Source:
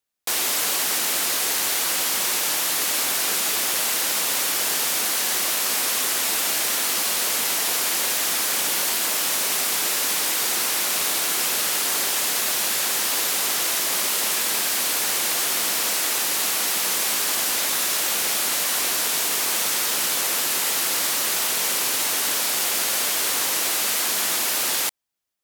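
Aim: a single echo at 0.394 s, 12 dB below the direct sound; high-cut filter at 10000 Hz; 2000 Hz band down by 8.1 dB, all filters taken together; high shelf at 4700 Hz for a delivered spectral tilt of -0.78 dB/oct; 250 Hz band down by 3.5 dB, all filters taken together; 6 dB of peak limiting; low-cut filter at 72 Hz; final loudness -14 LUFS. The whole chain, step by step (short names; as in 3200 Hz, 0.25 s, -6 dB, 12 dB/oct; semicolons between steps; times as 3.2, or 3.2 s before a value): HPF 72 Hz; LPF 10000 Hz; bell 250 Hz -4.5 dB; bell 2000 Hz -9 dB; high shelf 4700 Hz -7.5 dB; limiter -22.5 dBFS; echo 0.394 s -12 dB; gain +16 dB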